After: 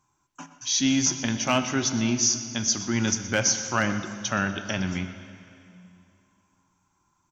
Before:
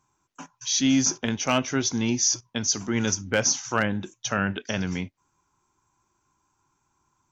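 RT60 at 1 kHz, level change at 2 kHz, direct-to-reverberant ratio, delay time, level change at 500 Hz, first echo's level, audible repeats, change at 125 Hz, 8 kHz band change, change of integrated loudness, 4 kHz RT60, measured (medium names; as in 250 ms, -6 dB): 2.6 s, +0.5 dB, 8.5 dB, 122 ms, -2.0 dB, -17.0 dB, 1, +0.5 dB, no reading, 0.0 dB, 2.5 s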